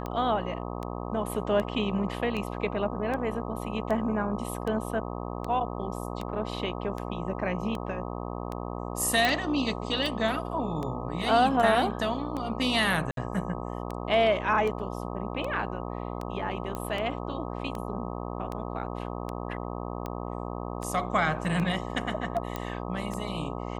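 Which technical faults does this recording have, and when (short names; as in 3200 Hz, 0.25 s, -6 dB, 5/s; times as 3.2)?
buzz 60 Hz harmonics 21 -35 dBFS
tick 78 rpm -21 dBFS
9.25 pop -10 dBFS
13.11–13.17 gap 62 ms
16.75 pop -20 dBFS
22.56 pop -17 dBFS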